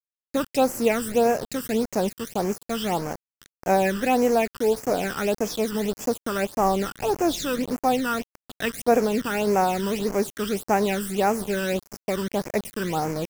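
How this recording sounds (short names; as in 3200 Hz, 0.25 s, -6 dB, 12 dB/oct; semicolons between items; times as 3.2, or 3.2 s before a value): a quantiser's noise floor 6-bit, dither none; phasing stages 12, 1.7 Hz, lowest notch 700–3700 Hz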